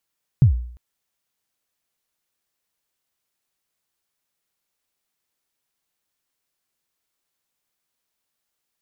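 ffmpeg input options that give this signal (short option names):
-f lavfi -i "aevalsrc='0.473*pow(10,-3*t/0.59)*sin(2*PI*(150*0.108/log(60/150)*(exp(log(60/150)*min(t,0.108)/0.108)-1)+60*max(t-0.108,0)))':d=0.35:s=44100"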